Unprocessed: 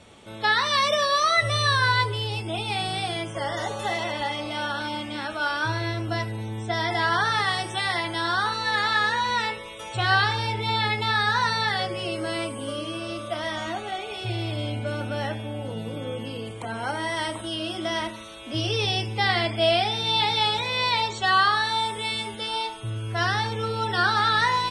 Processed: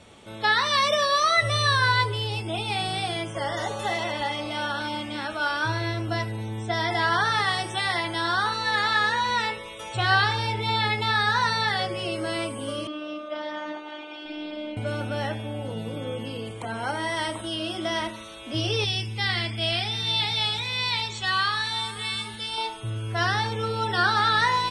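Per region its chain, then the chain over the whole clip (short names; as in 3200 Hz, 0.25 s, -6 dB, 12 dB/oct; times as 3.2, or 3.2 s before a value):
12.87–14.77 steep high-pass 180 Hz + air absorption 180 m + robotiser 302 Hz
18.84–22.58 bell 610 Hz -12 dB 1.9 oct + tapped delay 0.483/0.736 s -18/-19 dB
whole clip: dry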